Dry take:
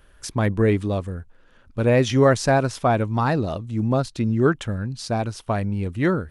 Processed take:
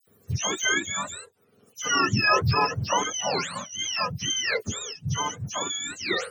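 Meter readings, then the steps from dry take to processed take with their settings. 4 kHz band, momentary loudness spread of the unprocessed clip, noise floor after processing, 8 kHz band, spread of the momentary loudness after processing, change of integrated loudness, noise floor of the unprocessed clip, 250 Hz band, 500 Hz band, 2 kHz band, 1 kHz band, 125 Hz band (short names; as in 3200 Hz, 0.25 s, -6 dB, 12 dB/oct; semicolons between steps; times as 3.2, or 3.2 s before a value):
+9.0 dB, 11 LU, -62 dBFS, +9.5 dB, 11 LU, -3.5 dB, -53 dBFS, -12.5 dB, -11.0 dB, +3.0 dB, -1.0 dB, -9.0 dB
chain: spectrum mirrored in octaves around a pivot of 830 Hz; dispersion lows, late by 73 ms, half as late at 2700 Hz; gain -2 dB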